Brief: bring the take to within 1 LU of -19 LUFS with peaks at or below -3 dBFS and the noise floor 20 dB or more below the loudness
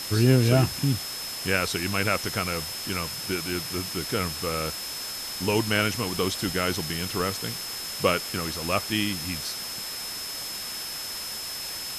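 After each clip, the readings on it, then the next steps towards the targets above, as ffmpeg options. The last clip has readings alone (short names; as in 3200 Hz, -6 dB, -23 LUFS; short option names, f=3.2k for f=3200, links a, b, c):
steady tone 5200 Hz; tone level -35 dBFS; noise floor -35 dBFS; noise floor target -47 dBFS; loudness -27.0 LUFS; peak -7.0 dBFS; loudness target -19.0 LUFS
-> -af "bandreject=f=5.2k:w=30"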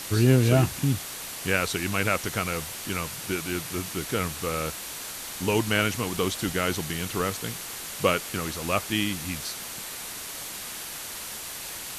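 steady tone none; noise floor -37 dBFS; noise floor target -48 dBFS
-> -af "afftdn=nr=11:nf=-37"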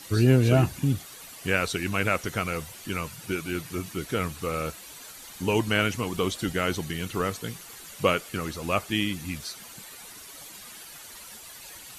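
noise floor -45 dBFS; noise floor target -48 dBFS
-> -af "afftdn=nr=6:nf=-45"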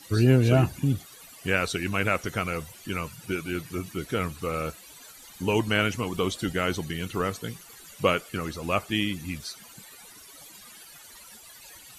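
noise floor -49 dBFS; loudness -27.5 LUFS; peak -7.5 dBFS; loudness target -19.0 LUFS
-> -af "volume=8.5dB,alimiter=limit=-3dB:level=0:latency=1"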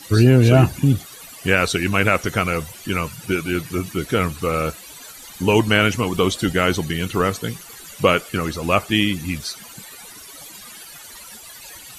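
loudness -19.5 LUFS; peak -3.0 dBFS; noise floor -40 dBFS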